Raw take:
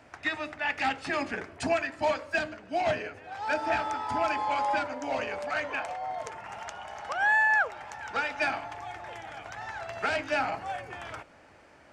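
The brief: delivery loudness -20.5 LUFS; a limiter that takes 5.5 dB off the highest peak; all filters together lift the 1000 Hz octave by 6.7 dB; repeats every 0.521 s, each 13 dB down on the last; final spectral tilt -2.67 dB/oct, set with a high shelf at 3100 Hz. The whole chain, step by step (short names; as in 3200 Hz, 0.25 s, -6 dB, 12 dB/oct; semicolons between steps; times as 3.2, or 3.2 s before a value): bell 1000 Hz +8 dB; high shelf 3100 Hz +7.5 dB; limiter -15.5 dBFS; feedback echo 0.521 s, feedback 22%, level -13 dB; gain +6.5 dB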